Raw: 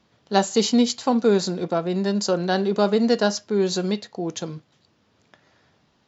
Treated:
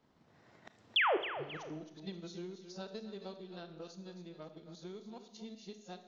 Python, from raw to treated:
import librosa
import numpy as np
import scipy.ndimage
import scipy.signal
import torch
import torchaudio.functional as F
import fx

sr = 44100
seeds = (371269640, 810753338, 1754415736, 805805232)

y = np.flip(x).copy()
y = fx.doppler_pass(y, sr, speed_mps=27, closest_m=1.6, pass_at_s=1.24)
y = fx.high_shelf(y, sr, hz=2100.0, db=-10.5)
y = fx.transient(y, sr, attack_db=5, sustain_db=-4)
y = fx.spec_paint(y, sr, seeds[0], shape='fall', start_s=0.96, length_s=0.21, low_hz=320.0, high_hz=3600.0, level_db=-17.0)
y = fx.echo_feedback(y, sr, ms=266, feedback_pct=22, wet_db=-14.0)
y = fx.rev_schroeder(y, sr, rt60_s=0.66, comb_ms=26, drr_db=9.5)
y = fx.band_squash(y, sr, depth_pct=70)